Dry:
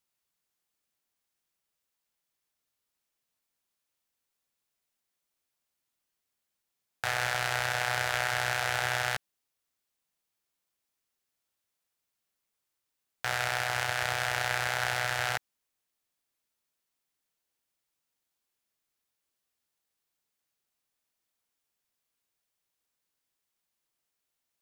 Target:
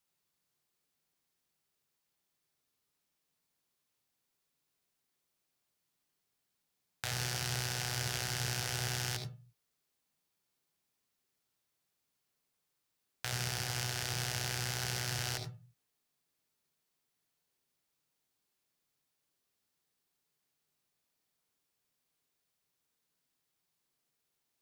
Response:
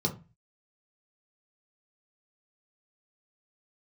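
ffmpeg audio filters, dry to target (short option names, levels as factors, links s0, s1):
-filter_complex "[0:a]acrossover=split=420|3000[s0][s1][s2];[s1]acompressor=threshold=0.00501:ratio=4[s3];[s0][s3][s2]amix=inputs=3:normalize=0,asplit=2[s4][s5];[1:a]atrim=start_sample=2205,adelay=73[s6];[s5][s6]afir=irnorm=-1:irlink=0,volume=0.237[s7];[s4][s7]amix=inputs=2:normalize=0"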